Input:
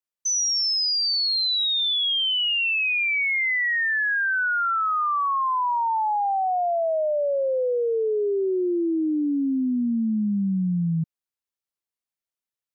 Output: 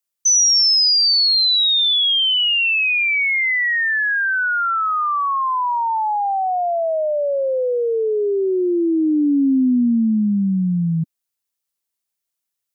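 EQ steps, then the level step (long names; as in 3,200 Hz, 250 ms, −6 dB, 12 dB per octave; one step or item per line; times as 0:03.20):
high-shelf EQ 4,300 Hz +9.5 dB
dynamic equaliser 260 Hz, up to +5 dB, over −37 dBFS, Q 1.8
+3.0 dB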